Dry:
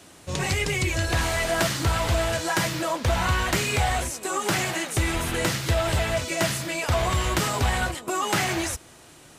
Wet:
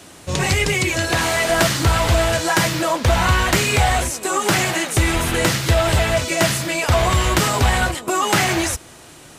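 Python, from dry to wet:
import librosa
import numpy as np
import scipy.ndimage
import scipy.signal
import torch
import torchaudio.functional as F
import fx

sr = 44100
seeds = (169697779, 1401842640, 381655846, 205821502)

y = fx.highpass(x, sr, hz=130.0, slope=12, at=(0.72, 1.49))
y = y * librosa.db_to_amplitude(7.0)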